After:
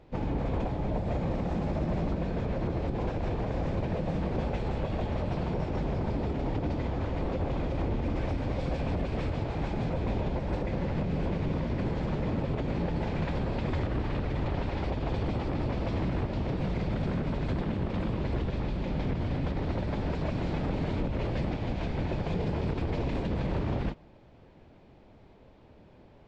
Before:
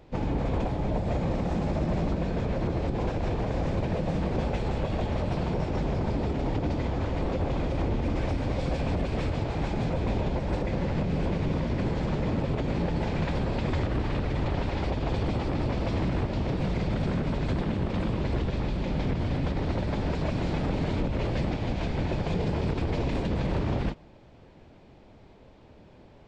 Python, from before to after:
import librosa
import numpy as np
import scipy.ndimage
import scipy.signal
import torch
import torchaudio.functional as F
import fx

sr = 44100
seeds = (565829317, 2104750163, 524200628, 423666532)

y = fx.high_shelf(x, sr, hz=6200.0, db=-9.0)
y = y * librosa.db_to_amplitude(-2.5)